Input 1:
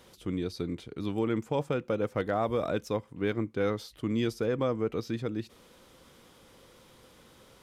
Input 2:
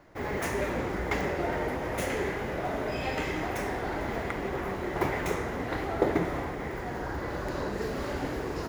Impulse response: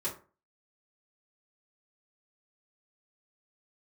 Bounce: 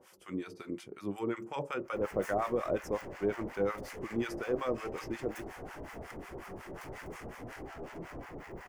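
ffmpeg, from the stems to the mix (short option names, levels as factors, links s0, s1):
-filter_complex "[0:a]highpass=f=450:p=1,volume=1.33,asplit=2[s0][s1];[s1]volume=0.266[s2];[1:a]aeval=exprs='(tanh(79.4*val(0)+0.3)-tanh(0.3))/79.4':c=same,adelay=1800,volume=0.944[s3];[2:a]atrim=start_sample=2205[s4];[s2][s4]afir=irnorm=-1:irlink=0[s5];[s0][s3][s5]amix=inputs=3:normalize=0,equalizer=f=3800:w=2.9:g=-13,acrossover=split=830[s6][s7];[s6]aeval=exprs='val(0)*(1-1/2+1/2*cos(2*PI*5.5*n/s))':c=same[s8];[s7]aeval=exprs='val(0)*(1-1/2-1/2*cos(2*PI*5.5*n/s))':c=same[s9];[s8][s9]amix=inputs=2:normalize=0"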